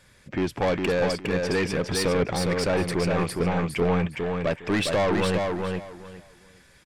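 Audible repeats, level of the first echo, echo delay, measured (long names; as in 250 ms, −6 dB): 3, −4.0 dB, 410 ms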